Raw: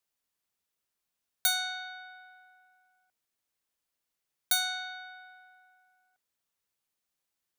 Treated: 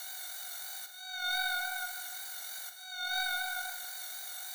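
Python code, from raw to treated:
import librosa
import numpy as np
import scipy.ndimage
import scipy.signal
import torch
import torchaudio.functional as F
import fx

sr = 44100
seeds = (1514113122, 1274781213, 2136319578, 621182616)

y = fx.bin_compress(x, sr, power=0.4)
y = scipy.signal.sosfilt(scipy.signal.butter(2, 600.0, 'highpass', fs=sr, output='sos'), y)
y = fx.over_compress(y, sr, threshold_db=-39.0, ratio=-0.5)
y = 10.0 ** (-25.5 / 20.0) * np.tanh(y / 10.0 ** (-25.5 / 20.0))
y = fx.wow_flutter(y, sr, seeds[0], rate_hz=2.1, depth_cents=34.0)
y = fx.stretch_grains(y, sr, factor=0.6, grain_ms=43.0)
y = fx.echo_feedback(y, sr, ms=147, feedback_pct=53, wet_db=-12.5)
y = fx.room_shoebox(y, sr, seeds[1], volume_m3=240.0, walls='mixed', distance_m=0.53)
y = F.gain(torch.from_numpy(y), 4.5).numpy()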